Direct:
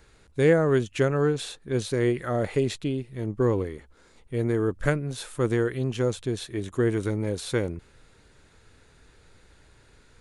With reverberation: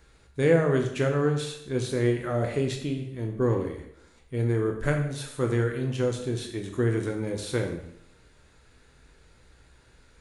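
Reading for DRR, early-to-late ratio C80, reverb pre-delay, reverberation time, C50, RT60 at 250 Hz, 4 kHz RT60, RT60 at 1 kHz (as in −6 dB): 2.5 dB, 9.5 dB, 5 ms, 0.70 s, 7.0 dB, 0.75 s, 0.65 s, 0.70 s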